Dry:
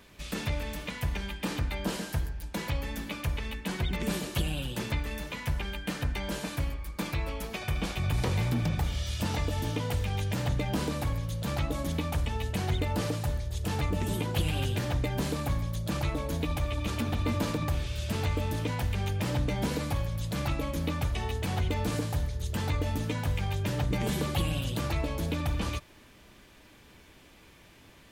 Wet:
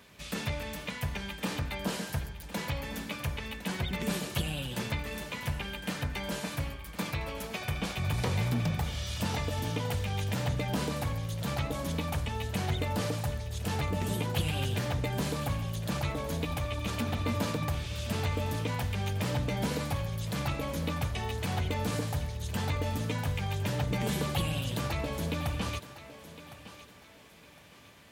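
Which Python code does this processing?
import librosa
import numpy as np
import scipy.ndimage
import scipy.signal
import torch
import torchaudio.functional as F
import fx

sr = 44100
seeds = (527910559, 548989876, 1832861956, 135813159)

p1 = scipy.signal.sosfilt(scipy.signal.butter(2, 80.0, 'highpass', fs=sr, output='sos'), x)
p2 = fx.peak_eq(p1, sr, hz=320.0, db=-5.5, octaves=0.42)
y = p2 + fx.echo_thinned(p2, sr, ms=1059, feedback_pct=34, hz=210.0, wet_db=-13.5, dry=0)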